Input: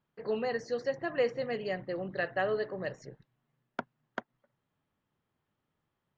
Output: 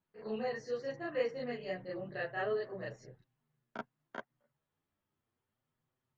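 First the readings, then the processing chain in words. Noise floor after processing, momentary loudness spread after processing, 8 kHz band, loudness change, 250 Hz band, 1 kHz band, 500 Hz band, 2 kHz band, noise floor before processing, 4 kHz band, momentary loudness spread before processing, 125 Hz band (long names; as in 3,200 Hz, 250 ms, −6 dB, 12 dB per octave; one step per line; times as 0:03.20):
below −85 dBFS, 13 LU, can't be measured, −5.0 dB, −4.0 dB, −5.0 dB, −5.0 dB, −5.5 dB, −84 dBFS, −5.0 dB, 13 LU, −4.5 dB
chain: backwards echo 33 ms −5 dB
multi-voice chorus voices 2, 0.34 Hz, delay 11 ms, depth 3.4 ms
level −3.5 dB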